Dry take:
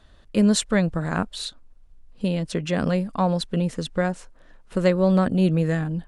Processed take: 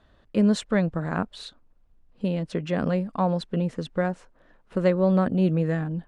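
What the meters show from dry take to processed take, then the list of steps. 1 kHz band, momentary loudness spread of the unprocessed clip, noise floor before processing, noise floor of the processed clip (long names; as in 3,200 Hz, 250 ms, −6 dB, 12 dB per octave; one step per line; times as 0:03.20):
−2.0 dB, 10 LU, −51 dBFS, −60 dBFS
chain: low-pass filter 1,900 Hz 6 dB per octave
low-shelf EQ 67 Hz −10 dB
level −1 dB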